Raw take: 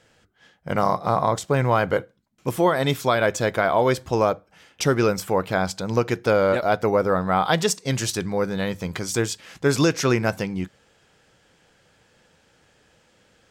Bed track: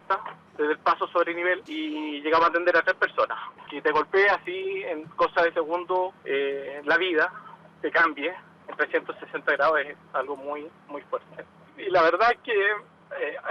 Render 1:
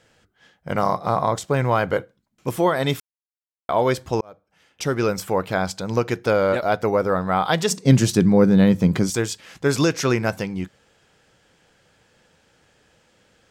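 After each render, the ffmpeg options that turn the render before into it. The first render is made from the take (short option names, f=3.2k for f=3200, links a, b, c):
-filter_complex "[0:a]asettb=1/sr,asplit=3[a][b][c];[a]atrim=end=7.714[d];[b]atrim=start=7.71:end=9.1,asetpts=PTS-STARTPTS,afade=t=in:d=0.004:c=qsin,afade=t=out:st=1.386:d=0.004:c=qsin,equalizer=f=200:t=o:w=2.3:g=14[e];[c]atrim=start=9.096[f];[d][e]acrossfade=d=0.004:c1=hsin:c2=qsin[g];[g][f]acrossfade=d=0.004:c1=qsin:c2=hsin,asplit=4[h][i][j][k];[h]atrim=end=3,asetpts=PTS-STARTPTS,afade=t=out:st=2.996:d=0.004:c=hsin[l];[i]atrim=start=3:end=3.69,asetpts=PTS-STARTPTS,volume=0[m];[j]atrim=start=3.69:end=4.21,asetpts=PTS-STARTPTS,afade=t=in:d=0.004:c=hsin,afade=t=out:st=0.516:d=0.004:c=hsin[n];[k]atrim=start=4.21,asetpts=PTS-STARTPTS,afade=t=in:d=0.98[o];[l][m][n][o]concat=n=4:v=0:a=1"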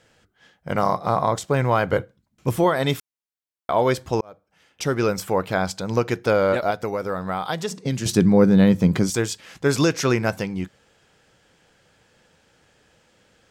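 -filter_complex "[0:a]asettb=1/sr,asplit=3[a][b][c];[a]atrim=end=1.924[d];[b]atrim=start=1.92:end=2.64,asetpts=PTS-STARTPTS,afade=t=in:d=0.004:c=qsin,afade=t=out:st=0.716:d=0.004:c=qsin,equalizer=f=75:w=0.64:g=9[e];[c]atrim=start=2.636[f];[d][e]acrossfade=d=0.004:c1=hsin:c2=qsin[g];[g][f]acrossfade=d=0.004:c1=qsin:c2=hsin,asettb=1/sr,asplit=3[h][i][j];[h]atrim=end=6.704[k];[i]atrim=start=6.7:end=8.06,asetpts=PTS-STARTPTS,afade=t=in:d=0.004:c=qsin,afade=t=out:st=1.356:d=0.004:c=qsin,acrossover=split=1800|4200[l][m][n];[l]acompressor=threshold=-24dB:ratio=4[o];[m]acompressor=threshold=-39dB:ratio=4[p];[n]acompressor=threshold=-38dB:ratio=4[q];[o][p][q]amix=inputs=3:normalize=0[r];[j]atrim=start=8.056[s];[k][r]acrossfade=d=0.004:c1=hsin:c2=qsin[t];[t][s]acrossfade=d=0.004:c1=qsin:c2=hsin"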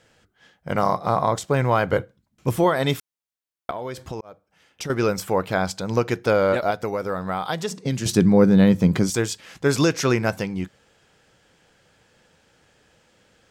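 -filter_complex "[0:a]asettb=1/sr,asplit=3[a][b][c];[a]atrim=end=3.704[d];[b]atrim=start=3.7:end=4.9,asetpts=PTS-STARTPTS,afade=t=in:d=0.004:c=qsin,afade=t=out:st=1.196:d=0.004:c=qsin,acompressor=threshold=-27dB:ratio=8:attack=3.2:release=140:knee=1:detection=peak[e];[c]atrim=start=4.896[f];[d][e]acrossfade=d=0.004:c1=hsin:c2=qsin[g];[g][f]acrossfade=d=0.004:c1=qsin:c2=hsin"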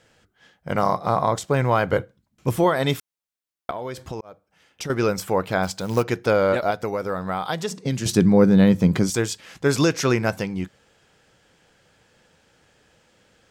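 -filter_complex "[0:a]asplit=3[a][b][c];[a]afade=t=out:st=5.62:d=0.02[d];[b]acrusher=bits=5:mode=log:mix=0:aa=0.000001,afade=t=in:st=5.62:d=0.02,afade=t=out:st=6.02:d=0.02[e];[c]afade=t=in:st=6.02:d=0.02[f];[d][e][f]amix=inputs=3:normalize=0"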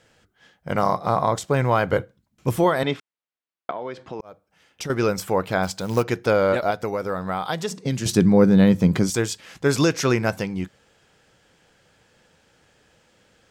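-filter_complex "[0:a]asettb=1/sr,asplit=3[a][b][c];[a]atrim=end=2.834[d];[b]atrim=start=2.83:end=4.2,asetpts=PTS-STARTPTS,afade=t=in:d=0.004:c=qsin,afade=t=out:st=1.366:d=0.004:c=qsin,highpass=190,lowpass=3.3k[e];[c]atrim=start=4.196[f];[d][e]acrossfade=d=0.004:c1=hsin:c2=qsin[g];[g][f]acrossfade=d=0.004:c1=qsin:c2=hsin"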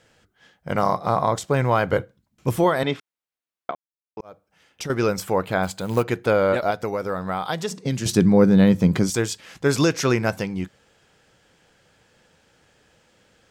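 -filter_complex "[0:a]asettb=1/sr,asplit=3[a][b][c];[a]atrim=end=5.454[d];[b]atrim=start=5.45:end=6.55,asetpts=PTS-STARTPTS,afade=t=in:d=0.004:c=qsin,afade=t=out:st=1.096:d=0.004:c=qsin,equalizer=f=5.5k:w=4.1:g=-10.5[e];[c]atrim=start=6.546[f];[d][e]acrossfade=d=0.004:c1=hsin:c2=qsin[g];[g][f]acrossfade=d=0.004:c1=qsin:c2=hsin,asplit=3[h][i][j];[h]atrim=end=3.75,asetpts=PTS-STARTPTS,afade=t=out:st=3.746:d=0.004:c=hsin[k];[i]atrim=start=3.75:end=4.17,asetpts=PTS-STARTPTS,volume=0[l];[j]atrim=start=4.17,asetpts=PTS-STARTPTS,afade=t=in:d=0.004:c=hsin[m];[k][l][m]concat=n=3:v=0:a=1"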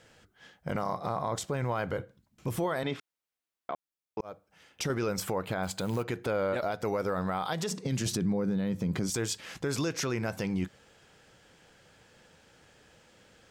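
-af "acompressor=threshold=-24dB:ratio=6,alimiter=limit=-21.5dB:level=0:latency=1:release=29"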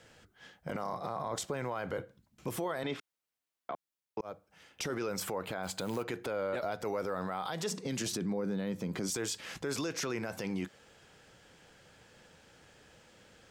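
-filter_complex "[0:a]acrossover=split=220[a][b];[a]acompressor=threshold=-45dB:ratio=6[c];[c][b]amix=inputs=2:normalize=0,alimiter=level_in=2dB:limit=-24dB:level=0:latency=1:release=17,volume=-2dB"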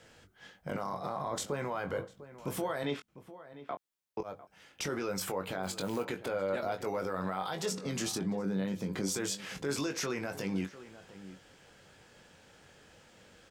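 -filter_complex "[0:a]asplit=2[a][b];[b]adelay=21,volume=-7dB[c];[a][c]amix=inputs=2:normalize=0,asplit=2[d][e];[e]adelay=699.7,volume=-15dB,highshelf=f=4k:g=-15.7[f];[d][f]amix=inputs=2:normalize=0"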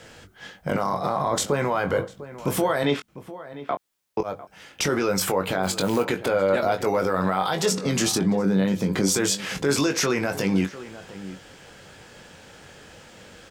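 -af "volume=12dB"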